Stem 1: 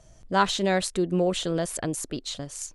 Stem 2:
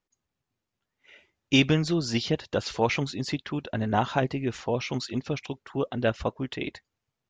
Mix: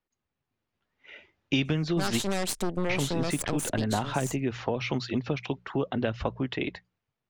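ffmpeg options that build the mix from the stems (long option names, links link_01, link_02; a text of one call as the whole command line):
ffmpeg -i stem1.wav -i stem2.wav -filter_complex "[0:a]bandreject=frequency=1000:width=5.6,aeval=exprs='0.282*(cos(1*acos(clip(val(0)/0.282,-1,1)))-cos(1*PI/2))+0.0562*(cos(8*acos(clip(val(0)/0.282,-1,1)))-cos(8*PI/2))':channel_layout=same,adelay=1650,volume=-1dB[link_01];[1:a]lowpass=3100,bandreject=frequency=60:width_type=h:width=6,bandreject=frequency=120:width_type=h:width=6,bandreject=frequency=180:width_type=h:width=6,dynaudnorm=framelen=170:gausssize=9:maxgain=9dB,volume=-1.5dB,asplit=3[link_02][link_03][link_04];[link_02]atrim=end=2.21,asetpts=PTS-STARTPTS,afade=type=out:start_time=2.206:duration=0.004:curve=hsin[link_05];[link_03]atrim=start=2.21:end=2.89,asetpts=PTS-STARTPTS,volume=0[link_06];[link_04]atrim=start=2.89,asetpts=PTS-STARTPTS,afade=type=in:duration=0.004:curve=hsin[link_07];[link_05][link_06][link_07]concat=n=3:v=0:a=1[link_08];[link_01][link_08]amix=inputs=2:normalize=0,acrossover=split=230|3000[link_09][link_10][link_11];[link_10]acompressor=threshold=-19dB:ratio=6[link_12];[link_09][link_12][link_11]amix=inputs=3:normalize=0,equalizer=frequency=7800:width=0.61:gain=4.5,acompressor=threshold=-27dB:ratio=2.5" out.wav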